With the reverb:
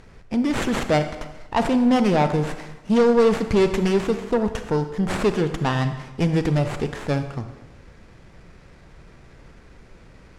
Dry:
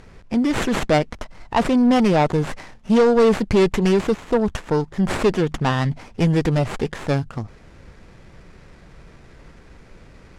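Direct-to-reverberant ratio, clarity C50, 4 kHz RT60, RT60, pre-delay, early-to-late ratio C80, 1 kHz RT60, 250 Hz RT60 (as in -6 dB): 8.5 dB, 9.5 dB, 1.0 s, 1.1 s, 25 ms, 11.5 dB, 1.1 s, 1.1 s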